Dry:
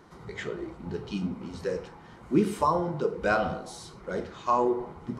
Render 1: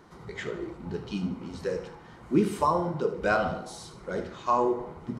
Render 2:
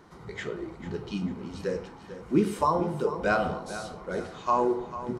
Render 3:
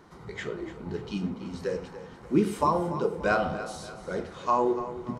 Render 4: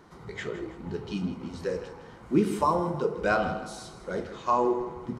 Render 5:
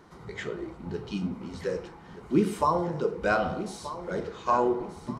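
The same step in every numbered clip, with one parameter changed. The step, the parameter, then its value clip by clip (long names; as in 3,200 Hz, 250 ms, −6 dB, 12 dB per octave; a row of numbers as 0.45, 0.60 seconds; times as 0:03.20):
repeating echo, delay time: 75, 445, 290, 160, 1,229 milliseconds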